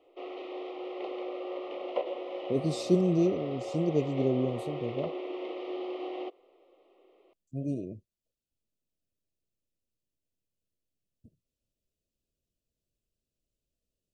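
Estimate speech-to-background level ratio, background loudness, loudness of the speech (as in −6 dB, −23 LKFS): 7.5 dB, −38.0 LKFS, −30.5 LKFS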